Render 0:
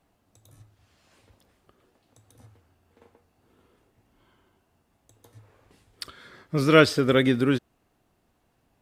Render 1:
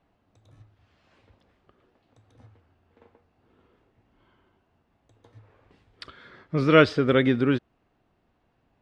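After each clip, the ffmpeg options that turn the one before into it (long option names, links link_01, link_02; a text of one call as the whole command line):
ffmpeg -i in.wav -af "lowpass=3400" out.wav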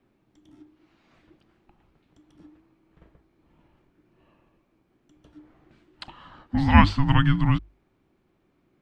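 ffmpeg -i in.wav -af "afreqshift=-410,bandreject=frequency=50:width_type=h:width=6,bandreject=frequency=100:width_type=h:width=6,volume=2dB" out.wav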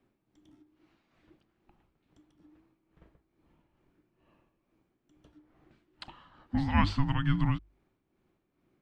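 ffmpeg -i in.wav -af "tremolo=f=2.3:d=0.58,volume=-4.5dB" out.wav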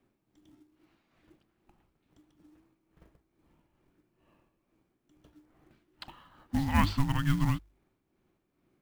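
ffmpeg -i in.wav -af "acrusher=bits=5:mode=log:mix=0:aa=0.000001" out.wav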